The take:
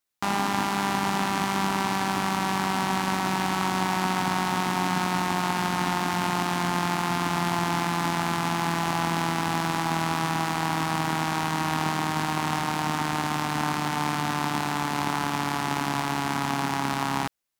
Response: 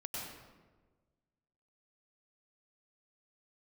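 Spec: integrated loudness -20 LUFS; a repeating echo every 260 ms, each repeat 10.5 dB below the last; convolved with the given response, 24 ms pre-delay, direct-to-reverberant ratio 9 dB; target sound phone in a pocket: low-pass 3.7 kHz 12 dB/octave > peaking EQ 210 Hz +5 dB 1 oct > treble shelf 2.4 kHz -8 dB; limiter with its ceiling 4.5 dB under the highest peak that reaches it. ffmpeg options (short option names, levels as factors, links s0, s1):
-filter_complex "[0:a]alimiter=limit=0.211:level=0:latency=1,aecho=1:1:260|520|780:0.299|0.0896|0.0269,asplit=2[s0][s1];[1:a]atrim=start_sample=2205,adelay=24[s2];[s1][s2]afir=irnorm=-1:irlink=0,volume=0.335[s3];[s0][s3]amix=inputs=2:normalize=0,lowpass=3700,equalizer=f=210:t=o:w=1:g=5,highshelf=f=2400:g=-8,volume=2.11"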